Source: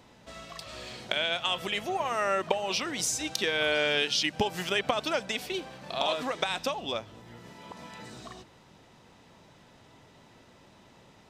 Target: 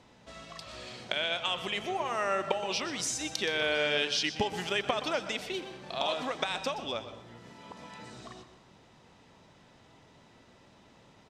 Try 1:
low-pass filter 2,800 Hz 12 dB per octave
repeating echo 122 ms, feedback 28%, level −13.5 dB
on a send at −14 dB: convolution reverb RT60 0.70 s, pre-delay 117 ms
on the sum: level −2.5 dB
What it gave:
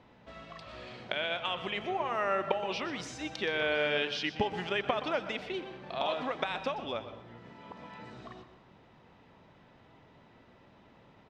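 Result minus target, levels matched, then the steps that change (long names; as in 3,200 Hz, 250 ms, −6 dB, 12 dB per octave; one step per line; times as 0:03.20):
8,000 Hz band −13.0 dB
change: low-pass filter 9,200 Hz 12 dB per octave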